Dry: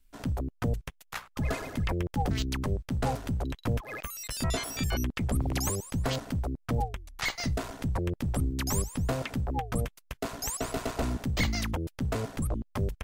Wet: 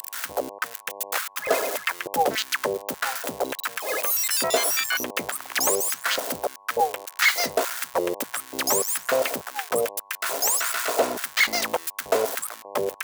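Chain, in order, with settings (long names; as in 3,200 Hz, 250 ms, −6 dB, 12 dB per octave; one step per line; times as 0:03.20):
spike at every zero crossing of −30 dBFS
hum with harmonics 100 Hz, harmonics 11, −51 dBFS −1 dB per octave
auto-filter high-pass square 1.7 Hz 510–1,500 Hz
level +8 dB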